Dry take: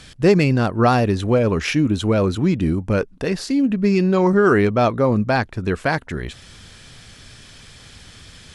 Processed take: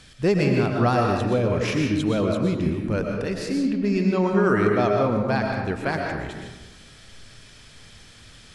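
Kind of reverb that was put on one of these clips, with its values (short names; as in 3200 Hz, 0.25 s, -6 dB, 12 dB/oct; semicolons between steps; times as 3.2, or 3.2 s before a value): digital reverb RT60 1.1 s, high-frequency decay 0.65×, pre-delay 80 ms, DRR 1 dB; gain -6.5 dB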